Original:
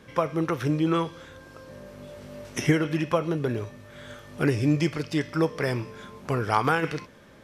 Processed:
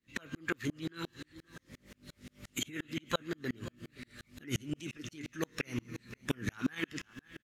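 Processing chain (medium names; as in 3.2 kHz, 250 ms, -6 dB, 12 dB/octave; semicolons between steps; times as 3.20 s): high-order bell 640 Hz -14.5 dB; feedback comb 120 Hz, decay 1.8 s, mix 70%; delay 525 ms -18.5 dB; peak limiter -30.5 dBFS, peak gain reduction 9.5 dB; formant shift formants +3 st; harmonic-percussive split harmonic -10 dB; sawtooth tremolo in dB swelling 5.7 Hz, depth 37 dB; trim +17 dB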